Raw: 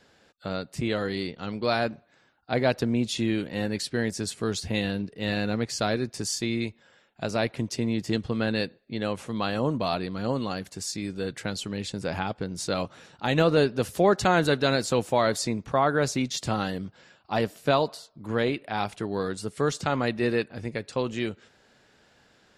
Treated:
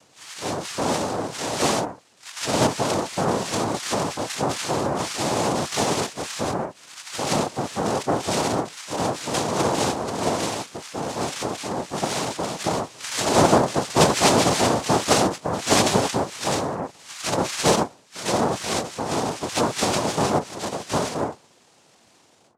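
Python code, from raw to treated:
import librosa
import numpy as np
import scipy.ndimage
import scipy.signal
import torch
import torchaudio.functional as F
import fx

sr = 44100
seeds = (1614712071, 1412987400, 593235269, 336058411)

y = fx.spec_delay(x, sr, highs='early', ms=536)
y = fx.noise_vocoder(y, sr, seeds[0], bands=2)
y = F.gain(torch.from_numpy(y), 5.5).numpy()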